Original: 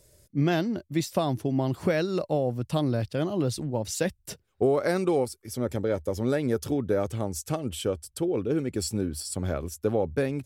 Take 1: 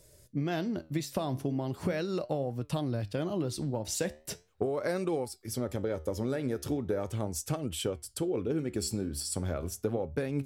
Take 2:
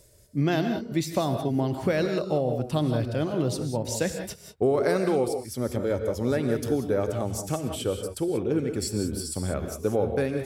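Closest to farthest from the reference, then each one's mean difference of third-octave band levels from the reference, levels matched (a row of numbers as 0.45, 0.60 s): 1, 2; 3.0, 5.0 dB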